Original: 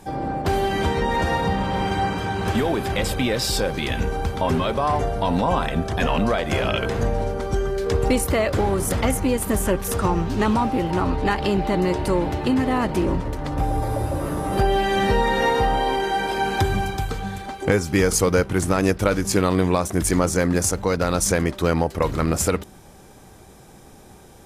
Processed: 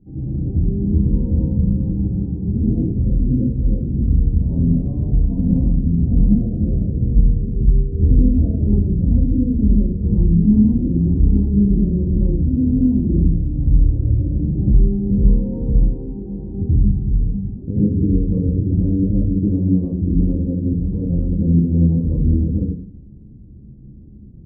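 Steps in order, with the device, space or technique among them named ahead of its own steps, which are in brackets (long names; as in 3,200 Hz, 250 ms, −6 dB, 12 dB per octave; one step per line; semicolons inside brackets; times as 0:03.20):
next room (low-pass filter 270 Hz 24 dB per octave; convolution reverb RT60 0.50 s, pre-delay 75 ms, DRR −8 dB)
level −1.5 dB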